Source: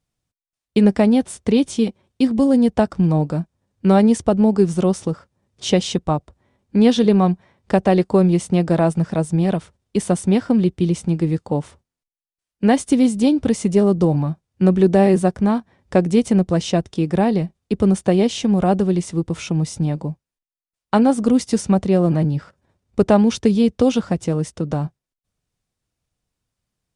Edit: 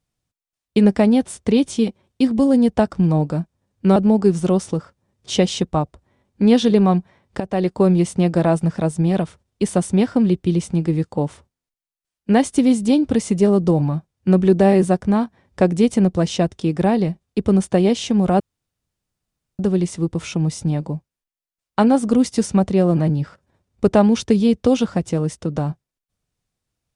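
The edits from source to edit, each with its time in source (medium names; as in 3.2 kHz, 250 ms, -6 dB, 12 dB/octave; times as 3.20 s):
3.96–4.30 s: delete
7.74–8.34 s: fade in equal-power, from -14 dB
18.74 s: insert room tone 1.19 s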